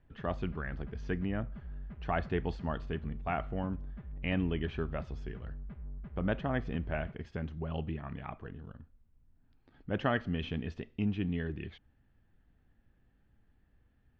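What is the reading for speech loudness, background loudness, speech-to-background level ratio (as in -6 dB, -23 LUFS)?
-37.0 LUFS, -46.5 LUFS, 9.5 dB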